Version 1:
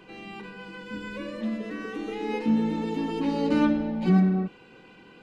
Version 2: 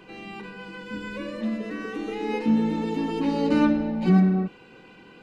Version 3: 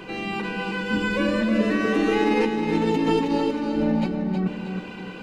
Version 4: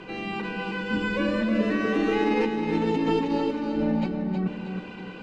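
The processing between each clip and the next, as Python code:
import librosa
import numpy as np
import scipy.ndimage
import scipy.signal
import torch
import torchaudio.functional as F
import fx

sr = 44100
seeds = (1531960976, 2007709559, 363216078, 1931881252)

y1 = fx.notch(x, sr, hz=3300.0, q=20.0)
y1 = y1 * 10.0 ** (2.0 / 20.0)
y2 = fx.over_compress(y1, sr, threshold_db=-29.0, ratio=-1.0)
y2 = fx.echo_feedback(y2, sr, ms=317, feedback_pct=40, wet_db=-6)
y2 = y2 * 10.0 ** (5.5 / 20.0)
y3 = fx.air_absorb(y2, sr, metres=63.0)
y3 = y3 * 10.0 ** (-2.5 / 20.0)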